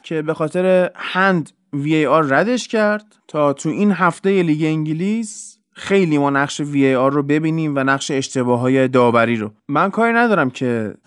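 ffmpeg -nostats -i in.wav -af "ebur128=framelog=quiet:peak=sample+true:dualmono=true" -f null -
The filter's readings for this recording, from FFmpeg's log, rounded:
Integrated loudness:
  I:         -14.0 LUFS
  Threshold: -24.2 LUFS
Loudness range:
  LRA:         1.7 LU
  Threshold: -34.3 LUFS
  LRA low:   -15.1 LUFS
  LRA high:  -13.4 LUFS
Sample peak:
  Peak:       -1.3 dBFS
True peak:
  Peak:       -1.3 dBFS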